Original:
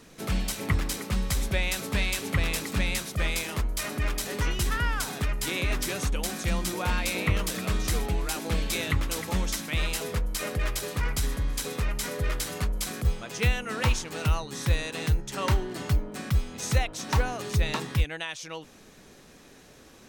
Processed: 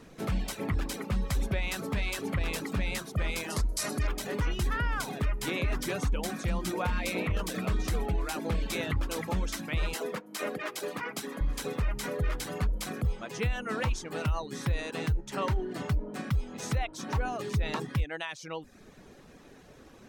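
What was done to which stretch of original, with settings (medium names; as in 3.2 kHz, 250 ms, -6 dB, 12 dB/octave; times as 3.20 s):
3.50–4.07 s: high-order bell 6.9 kHz +14 dB
9.94–11.41 s: high-pass 210 Hz 24 dB/octave
whole clip: reverb removal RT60 0.55 s; treble shelf 2.6 kHz -10 dB; peak limiter -23 dBFS; trim +2 dB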